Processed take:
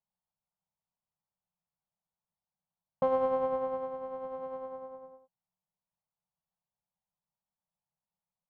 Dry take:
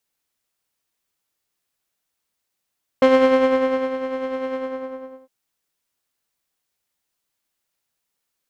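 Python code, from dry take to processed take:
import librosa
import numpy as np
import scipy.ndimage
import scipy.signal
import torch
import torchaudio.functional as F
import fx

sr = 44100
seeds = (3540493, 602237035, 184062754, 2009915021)

y = fx.curve_eq(x, sr, hz=(110.0, 180.0, 300.0, 560.0, 890.0, 1900.0, 3600.0, 5200.0), db=(0, 10, -22, -3, 2, -21, -20, -25))
y = y * librosa.db_to_amplitude(-7.5)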